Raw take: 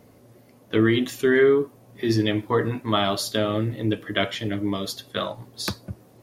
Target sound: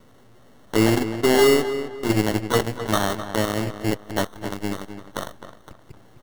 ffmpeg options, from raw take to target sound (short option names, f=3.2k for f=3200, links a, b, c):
-filter_complex "[0:a]aeval=exprs='val(0)+0.5*0.0531*sgn(val(0))':c=same,equalizer=f=12k:w=0.52:g=-13,asettb=1/sr,asplit=3[a][b][c];[a]atrim=end=5.484[d];[b]atrim=start=5.48:end=5.9,asetpts=PTS-STARTPTS,afade=t=in:d=0.004:c=qsin,afade=t=out:st=0.416:d=0.004:c=qsin,acrossover=split=150[e][f];[f]acompressor=threshold=-37dB:ratio=2[g];[e][g]amix=inputs=2:normalize=0[h];[c]atrim=start=5.896[i];[d][h]acrossfade=d=0.004:c1=hsin:c2=qsin[j];[j][i]acrossfade=d=0.004:c1=qsin:c2=hsin,acrusher=samples=18:mix=1:aa=0.000001,aeval=exprs='0.422*(cos(1*acos(clip(val(0)/0.422,-1,1)))-cos(1*PI/2))+0.0668*(cos(7*acos(clip(val(0)/0.422,-1,1)))-cos(7*PI/2))+0.015*(cos(8*acos(clip(val(0)/0.422,-1,1)))-cos(8*PI/2))':c=same,asplit=2[k][l];[l]adelay=260,lowpass=f=3.1k:p=1,volume=-10.5dB,asplit=2[m][n];[n]adelay=260,lowpass=f=3.1k:p=1,volume=0.34,asplit=2[o][p];[p]adelay=260,lowpass=f=3.1k:p=1,volume=0.34,asplit=2[q][r];[r]adelay=260,lowpass=f=3.1k:p=1,volume=0.34[s];[k][m][o][q][s]amix=inputs=5:normalize=0"